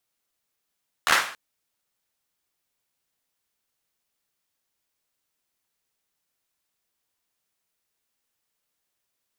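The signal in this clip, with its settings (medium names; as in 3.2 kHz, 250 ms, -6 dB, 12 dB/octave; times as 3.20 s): hand clap length 0.28 s, bursts 5, apart 13 ms, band 1.4 kHz, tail 0.46 s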